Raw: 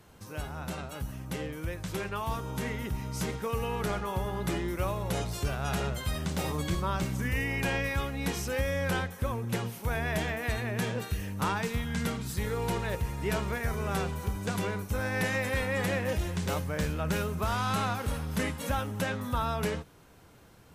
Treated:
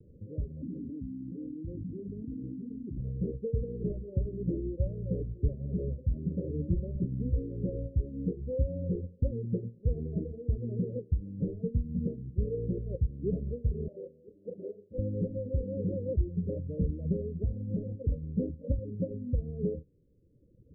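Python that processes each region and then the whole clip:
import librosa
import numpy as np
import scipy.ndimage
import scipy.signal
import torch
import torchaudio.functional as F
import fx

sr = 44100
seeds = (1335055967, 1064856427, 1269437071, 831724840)

y = fx.chain(x, sr, fx.vowel_filter(vowel='i'),
    fx.low_shelf(hz=200.0, db=9.5),
    fx.env_flatten(amount_pct=100), at=(0.62, 2.97))
y = fx.chain(y, sr, fx.highpass(hz=470.0, slope=12),
    fx.doubler(ms=39.0, db=-7.0), at=(13.88, 14.98))
y = scipy.signal.sosfilt(scipy.signal.butter(16, 550.0, 'lowpass', fs=sr, output='sos'), y)
y = fx.dereverb_blind(y, sr, rt60_s=1.6)
y = fx.low_shelf(y, sr, hz=230.0, db=5.0)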